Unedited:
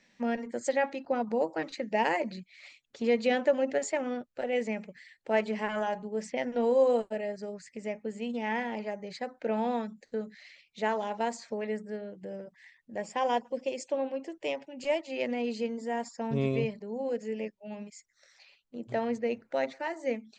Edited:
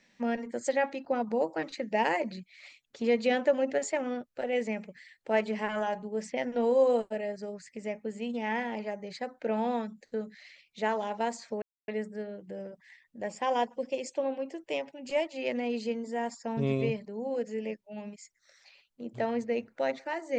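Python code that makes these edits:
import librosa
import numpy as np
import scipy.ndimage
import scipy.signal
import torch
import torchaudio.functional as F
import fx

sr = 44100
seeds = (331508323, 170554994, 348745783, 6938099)

y = fx.edit(x, sr, fx.insert_silence(at_s=11.62, length_s=0.26), tone=tone)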